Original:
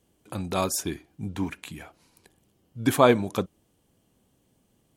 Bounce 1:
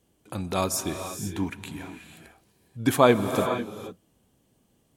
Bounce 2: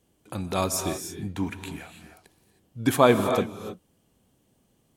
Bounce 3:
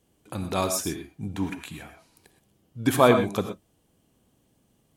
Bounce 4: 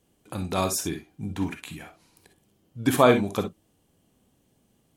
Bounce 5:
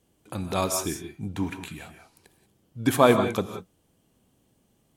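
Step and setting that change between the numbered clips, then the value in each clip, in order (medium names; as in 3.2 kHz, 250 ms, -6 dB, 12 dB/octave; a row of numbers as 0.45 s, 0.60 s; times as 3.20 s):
gated-style reverb, gate: 520 ms, 340 ms, 140 ms, 80 ms, 210 ms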